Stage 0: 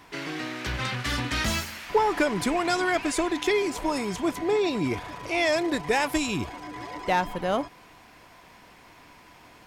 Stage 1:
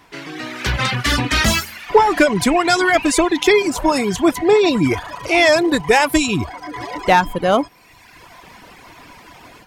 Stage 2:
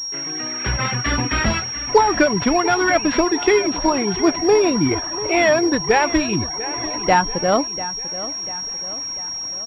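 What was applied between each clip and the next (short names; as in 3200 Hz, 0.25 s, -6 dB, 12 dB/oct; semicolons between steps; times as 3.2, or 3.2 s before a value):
reverb removal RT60 1.1 s; AGC gain up to 11 dB; gain +1.5 dB
feedback echo 0.693 s, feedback 48%, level -14.5 dB; pulse-width modulation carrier 5600 Hz; gain -2 dB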